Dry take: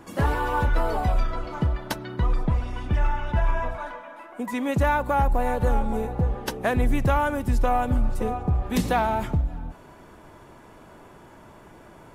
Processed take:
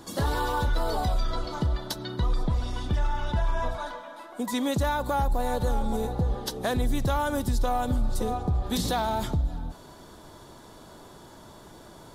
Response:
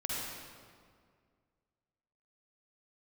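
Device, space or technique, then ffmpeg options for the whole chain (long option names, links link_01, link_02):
over-bright horn tweeter: -af "highshelf=frequency=3100:width_type=q:width=3:gain=6.5,alimiter=limit=-18dB:level=0:latency=1:release=89"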